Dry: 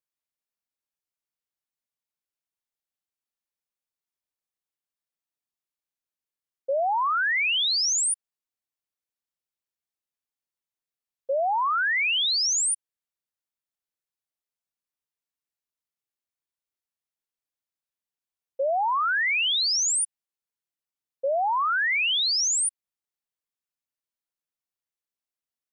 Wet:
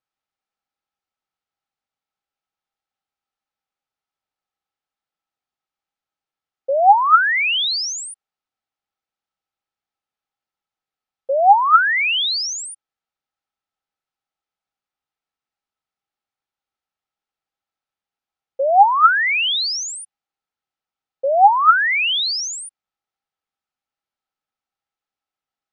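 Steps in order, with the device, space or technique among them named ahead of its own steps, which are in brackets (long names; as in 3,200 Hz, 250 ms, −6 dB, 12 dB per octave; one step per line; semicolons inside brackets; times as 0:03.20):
inside a cardboard box (low-pass filter 4,400 Hz; hollow resonant body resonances 800/1,300 Hz, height 13 dB)
level +5.5 dB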